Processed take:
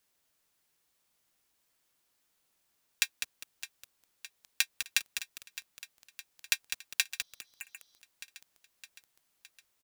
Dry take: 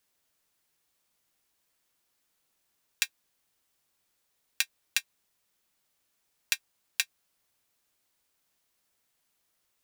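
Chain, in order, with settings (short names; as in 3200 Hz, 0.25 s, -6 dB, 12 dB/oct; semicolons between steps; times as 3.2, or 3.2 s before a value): feedback echo 0.613 s, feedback 60%, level -14.5 dB; spectral repair 7.21–7.96, 3000–6500 Hz after; lo-fi delay 0.202 s, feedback 35%, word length 6-bit, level -7 dB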